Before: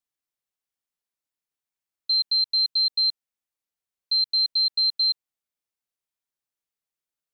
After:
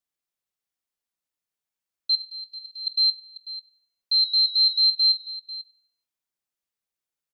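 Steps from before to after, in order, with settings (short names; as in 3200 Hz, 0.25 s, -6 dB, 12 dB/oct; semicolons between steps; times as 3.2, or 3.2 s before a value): 2.15–2.87 Butterworth band-stop 3900 Hz, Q 3.4; 4.12–4.86 whine 3900 Hz -33 dBFS; tapped delay 48/493 ms -18.5/-15 dB; on a send at -14.5 dB: reverb RT60 0.60 s, pre-delay 3 ms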